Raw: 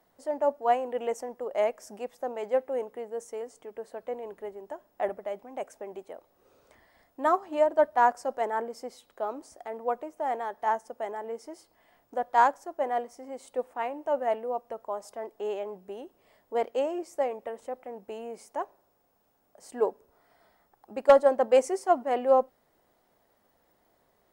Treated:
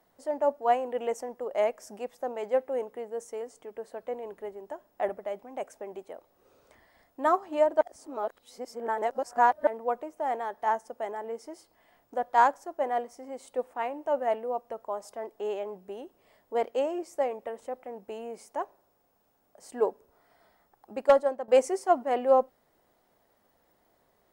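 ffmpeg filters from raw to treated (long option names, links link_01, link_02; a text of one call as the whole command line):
ffmpeg -i in.wav -filter_complex "[0:a]asplit=4[link_01][link_02][link_03][link_04];[link_01]atrim=end=7.812[link_05];[link_02]atrim=start=7.808:end=9.672,asetpts=PTS-STARTPTS,areverse[link_06];[link_03]atrim=start=9.668:end=21.48,asetpts=PTS-STARTPTS,afade=type=out:start_time=11.292:duration=0.52:silence=0.177828[link_07];[link_04]atrim=start=21.48,asetpts=PTS-STARTPTS,afade=type=in:duration=0.004:curve=hsin:silence=0.177828[link_08];[link_05][link_06]acrossfade=duration=0.004:curve1=hsin:curve2=hsin[link_09];[link_07][link_08]concat=n=2:v=0:a=1[link_10];[link_09][link_10]acrossfade=duration=0.004:curve1=hsin:curve2=hsin" out.wav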